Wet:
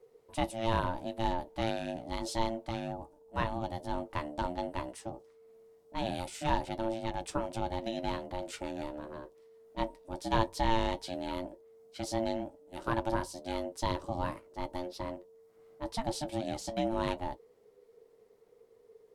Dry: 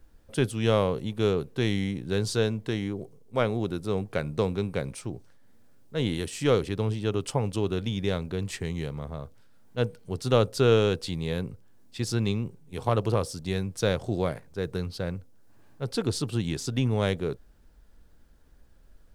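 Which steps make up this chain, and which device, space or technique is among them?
alien voice (ring modulator 450 Hz; flange 0.75 Hz, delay 7.9 ms, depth 2.9 ms, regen -52%)

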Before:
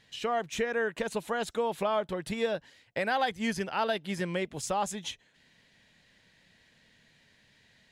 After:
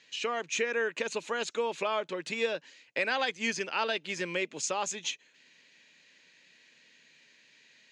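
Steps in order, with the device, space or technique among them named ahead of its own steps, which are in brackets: television speaker (cabinet simulation 190–7500 Hz, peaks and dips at 200 Hz -9 dB, 730 Hz -8 dB, 2.5 kHz +9 dB, 4.4 kHz +4 dB, 6.6 kHz +9 dB)

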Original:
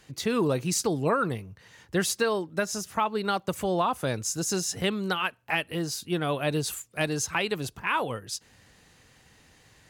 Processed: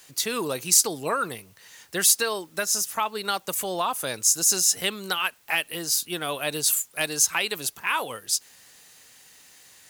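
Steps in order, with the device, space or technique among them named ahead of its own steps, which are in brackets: turntable without a phono preamp (RIAA curve recording; white noise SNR 34 dB)

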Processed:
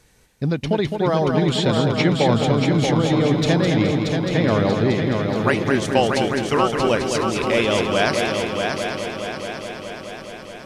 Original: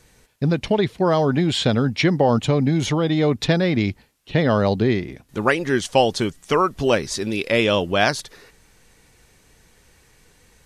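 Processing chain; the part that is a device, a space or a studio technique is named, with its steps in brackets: multi-head tape echo (multi-head delay 211 ms, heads first and third, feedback 71%, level -6 dB; wow and flutter 25 cents); trim -2 dB

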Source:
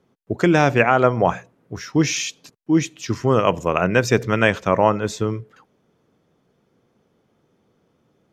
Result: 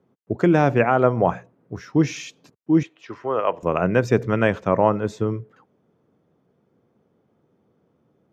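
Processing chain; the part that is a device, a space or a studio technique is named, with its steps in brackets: high-pass 74 Hz; 2.83–3.63 s: three-band isolator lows -20 dB, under 430 Hz, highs -16 dB, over 3.9 kHz; through cloth (treble shelf 2 kHz -13.5 dB)

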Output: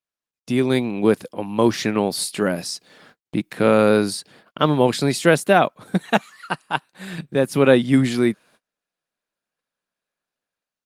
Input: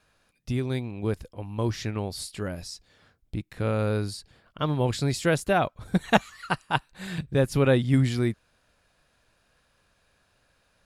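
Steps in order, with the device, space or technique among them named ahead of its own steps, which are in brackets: video call (high-pass 170 Hz 24 dB/octave; level rider gain up to 13.5 dB; gate -49 dBFS, range -31 dB; Opus 32 kbps 48 kHz)

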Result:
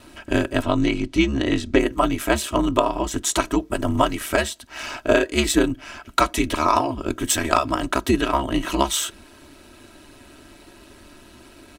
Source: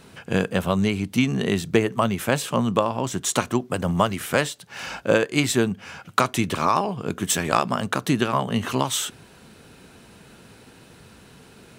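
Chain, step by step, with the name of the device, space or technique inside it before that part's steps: 0.62–1.79 s: low-pass 6.5 kHz 12 dB/octave; ring-modulated robot voice (ring modulator 72 Hz; comb 3.1 ms, depth 72%); trim +3 dB

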